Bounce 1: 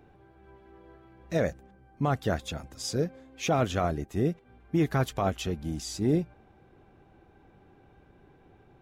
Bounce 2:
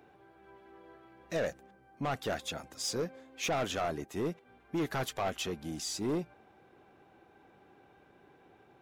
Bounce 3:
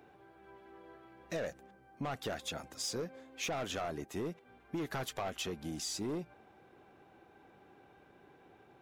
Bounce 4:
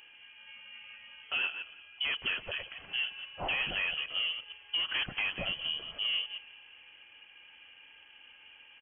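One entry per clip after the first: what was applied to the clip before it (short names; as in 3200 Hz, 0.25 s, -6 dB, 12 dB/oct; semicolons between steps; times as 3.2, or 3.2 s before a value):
HPF 420 Hz 6 dB/oct; soft clip -28.5 dBFS, distortion -9 dB; gain +1.5 dB
compressor, threshold -35 dBFS, peak gain reduction 6 dB
reverse delay 0.116 s, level -8 dB; frequency-shifting echo 0.175 s, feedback 53%, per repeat +43 Hz, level -20 dB; inverted band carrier 3200 Hz; gain +4.5 dB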